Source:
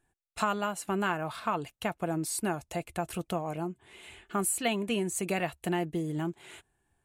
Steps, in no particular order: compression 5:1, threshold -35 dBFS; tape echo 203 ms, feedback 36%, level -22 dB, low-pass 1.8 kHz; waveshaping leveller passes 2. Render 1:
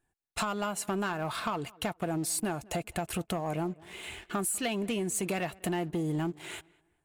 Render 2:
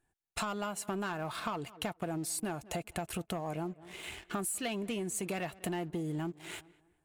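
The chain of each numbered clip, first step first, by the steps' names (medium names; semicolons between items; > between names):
compression > waveshaping leveller > tape echo; waveshaping leveller > tape echo > compression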